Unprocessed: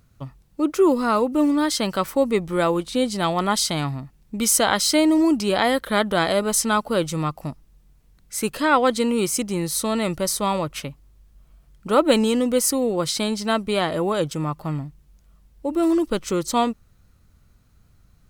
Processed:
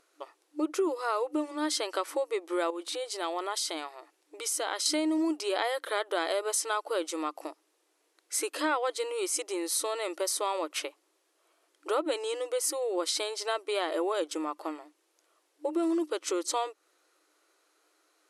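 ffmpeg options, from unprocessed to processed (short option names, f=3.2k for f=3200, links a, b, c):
-filter_complex "[0:a]asettb=1/sr,asplit=3[a][b][c];[a]atrim=end=2.704[d];[b]atrim=start=2.7:end=4.86,asetpts=PTS-STARTPTS,afade=t=in:d=0.004:c=qsin,afade=t=out:st=2.156:d=0.004:c=qsin,acompressor=threshold=-30dB:ratio=3:attack=3.2:release=140:knee=1:detection=peak[e];[c]atrim=start=4.856[f];[d][e]acrossfade=d=0.004:c1=hsin:c2=qsin[g];[g][f]acrossfade=d=0.004:c1=qsin:c2=hsin,acompressor=threshold=-26dB:ratio=6,afftfilt=real='re*between(b*sr/4096,300,12000)':imag='im*between(b*sr/4096,300,12000)':win_size=4096:overlap=0.75"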